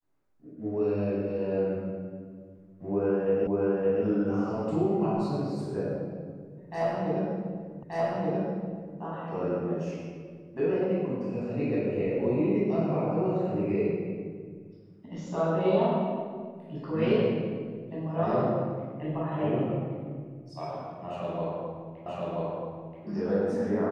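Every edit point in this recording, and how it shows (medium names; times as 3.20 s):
3.47 s: repeat of the last 0.57 s
7.83 s: repeat of the last 1.18 s
22.06 s: repeat of the last 0.98 s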